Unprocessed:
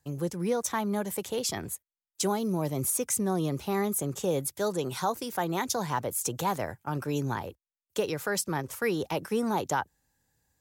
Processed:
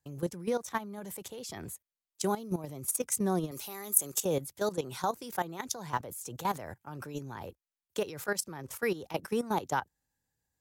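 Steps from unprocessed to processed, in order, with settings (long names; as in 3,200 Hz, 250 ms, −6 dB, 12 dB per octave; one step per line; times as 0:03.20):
0:03.51–0:04.25: RIAA equalisation recording
output level in coarse steps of 14 dB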